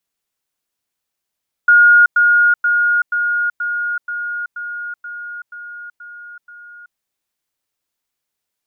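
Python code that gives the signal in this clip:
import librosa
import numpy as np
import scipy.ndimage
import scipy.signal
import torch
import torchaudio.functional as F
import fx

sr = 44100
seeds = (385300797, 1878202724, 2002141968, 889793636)

y = fx.level_ladder(sr, hz=1430.0, from_db=-5.5, step_db=-3.0, steps=11, dwell_s=0.38, gap_s=0.1)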